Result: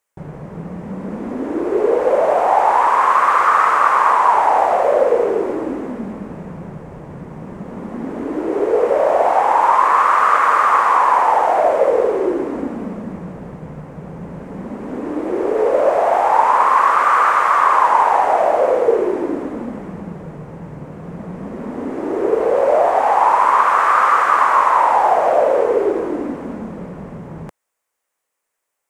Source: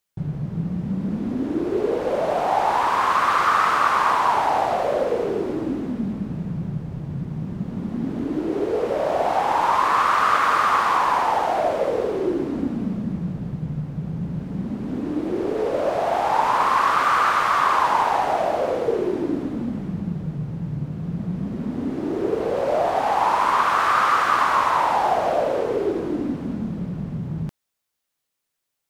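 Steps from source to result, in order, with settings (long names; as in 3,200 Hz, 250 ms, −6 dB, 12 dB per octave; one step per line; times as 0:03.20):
octave-band graphic EQ 125/500/1,000/2,000/4,000/8,000 Hz −8/+9/+8/+7/−6/+7 dB
in parallel at +2 dB: speech leveller within 3 dB
on the sum: level −10 dB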